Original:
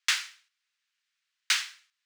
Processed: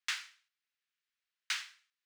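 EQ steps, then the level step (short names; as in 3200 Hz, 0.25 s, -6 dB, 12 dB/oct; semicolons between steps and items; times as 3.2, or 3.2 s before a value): low shelf 310 Hz -6.5 dB; high shelf 3600 Hz -5.5 dB; -7.5 dB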